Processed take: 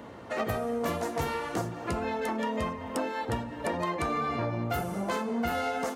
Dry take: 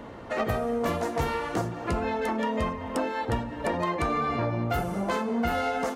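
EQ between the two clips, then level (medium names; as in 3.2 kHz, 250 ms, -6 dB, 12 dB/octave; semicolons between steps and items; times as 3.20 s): high-pass 69 Hz; treble shelf 6 kHz +6 dB; -3.0 dB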